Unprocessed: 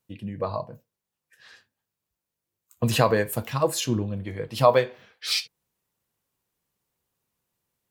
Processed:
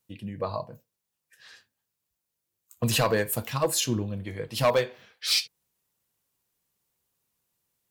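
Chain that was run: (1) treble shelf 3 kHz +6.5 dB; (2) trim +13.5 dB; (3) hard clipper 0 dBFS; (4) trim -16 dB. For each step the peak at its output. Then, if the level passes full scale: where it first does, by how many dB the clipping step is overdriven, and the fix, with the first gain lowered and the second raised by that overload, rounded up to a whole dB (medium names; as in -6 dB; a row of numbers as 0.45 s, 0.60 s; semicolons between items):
-4.0 dBFS, +9.5 dBFS, 0.0 dBFS, -16.0 dBFS; step 2, 9.5 dB; step 2 +3.5 dB, step 4 -6 dB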